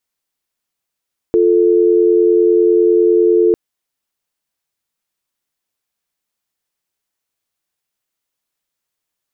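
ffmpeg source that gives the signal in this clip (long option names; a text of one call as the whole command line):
ffmpeg -f lavfi -i "aevalsrc='0.282*(sin(2*PI*350*t)+sin(2*PI*440*t))':duration=2.2:sample_rate=44100" out.wav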